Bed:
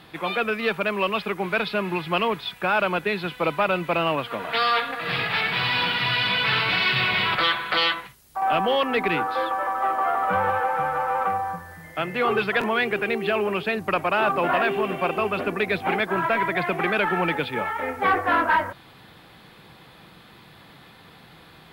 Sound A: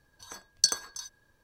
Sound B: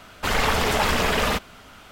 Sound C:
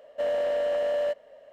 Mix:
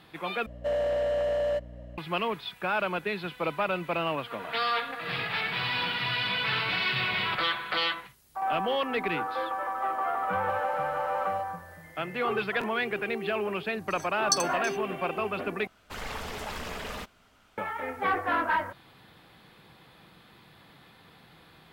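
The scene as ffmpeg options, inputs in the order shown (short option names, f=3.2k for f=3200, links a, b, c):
-filter_complex "[3:a]asplit=2[a][b];[0:a]volume=-6.5dB[c];[a]aeval=exprs='val(0)+0.00794*(sin(2*PI*60*n/s)+sin(2*PI*2*60*n/s)/2+sin(2*PI*3*60*n/s)/3+sin(2*PI*4*60*n/s)/4+sin(2*PI*5*60*n/s)/5)':c=same[d];[b]acompressor=threshold=-29dB:ratio=6:attack=3.2:release=140:knee=1:detection=peak[e];[1:a]aecho=1:1:7.3:0.65[f];[c]asplit=3[g][h][i];[g]atrim=end=0.464[j];[d]atrim=end=1.52,asetpts=PTS-STARTPTS,volume=-1dB[k];[h]atrim=start=1.976:end=15.674[l];[2:a]atrim=end=1.91,asetpts=PTS-STARTPTS,volume=-15.5dB[m];[i]atrim=start=17.576[n];[e]atrim=end=1.52,asetpts=PTS-STARTPTS,volume=-6dB,afade=t=in:d=0.004:c=hsin,afade=t=out:st=1.516:d=0.004:c=hsin,adelay=10300[o];[f]atrim=end=1.43,asetpts=PTS-STARTPTS,volume=-4.5dB,afade=t=in:d=0.004:c=hsin,afade=t=out:st=1.426:d=0.004:c=hsin,adelay=13680[p];[j][k]acrossfade=d=0.004:c1=hsin:c2=hsin[q];[q][l]acrossfade=d=0.004:c1=hsin:c2=hsin[r];[r][m]acrossfade=d=0.004:c1=hsin:c2=hsin[s];[s][n]acrossfade=d=0.004:c1=hsin:c2=hsin[t];[t][o][p]amix=inputs=3:normalize=0"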